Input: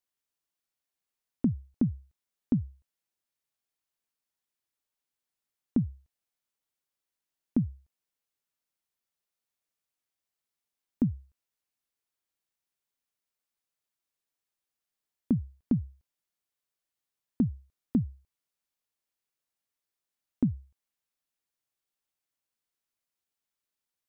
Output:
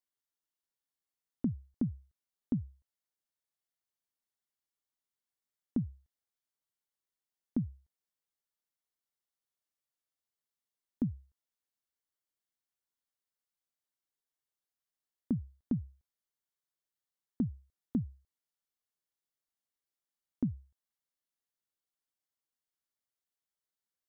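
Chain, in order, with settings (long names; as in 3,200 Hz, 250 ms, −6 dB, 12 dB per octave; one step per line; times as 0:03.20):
notch filter 2,500 Hz, Q 5.8
level −6 dB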